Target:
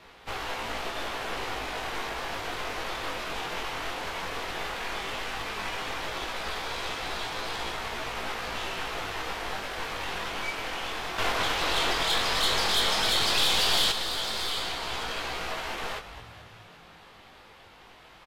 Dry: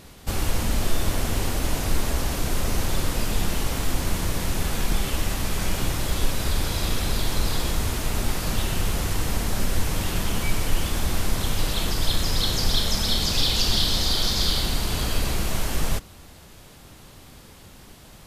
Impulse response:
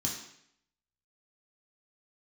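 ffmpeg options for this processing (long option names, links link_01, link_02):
-filter_complex "[0:a]acrossover=split=460 3700:gain=0.158 1 0.0891[link_01][link_02][link_03];[link_01][link_02][link_03]amix=inputs=3:normalize=0,bandreject=frequency=580:width=13,asplit=7[link_04][link_05][link_06][link_07][link_08][link_09][link_10];[link_05]adelay=218,afreqshift=32,volume=-14dB[link_11];[link_06]adelay=436,afreqshift=64,volume=-18.6dB[link_12];[link_07]adelay=654,afreqshift=96,volume=-23.2dB[link_13];[link_08]adelay=872,afreqshift=128,volume=-27.7dB[link_14];[link_09]adelay=1090,afreqshift=160,volume=-32.3dB[link_15];[link_10]adelay=1308,afreqshift=192,volume=-36.9dB[link_16];[link_04][link_11][link_12][link_13][link_14][link_15][link_16]amix=inputs=7:normalize=0,acrossover=split=240|3000[link_17][link_18][link_19];[link_17]acompressor=threshold=-43dB:ratio=6[link_20];[link_20][link_18][link_19]amix=inputs=3:normalize=0,aeval=exprs='(tanh(39.8*val(0)+0.6)-tanh(0.6))/39.8':channel_layout=same,flanger=delay=17:depth=5.1:speed=0.13,asettb=1/sr,asplit=3[link_21][link_22][link_23];[link_21]atrim=end=11.184[link_24];[link_22]atrim=start=11.18:end=13.92,asetpts=PTS-STARTPTS,afade=type=in:duration=0.004:curve=qsin,afade=type=out:start_time=2.736:duration=0.004:curve=qsin,acontrast=62[link_25];[link_23]atrim=start=13.916[link_26];[link_24][link_25]acrossfade=duration=0.004:curve1=hsin:curve2=qsin[link_27];[link_27][link_26]acrossfade=duration=0.004:curve1=qsin:curve2=hsin,volume=8dB" -ar 48000 -c:a libvorbis -b:a 64k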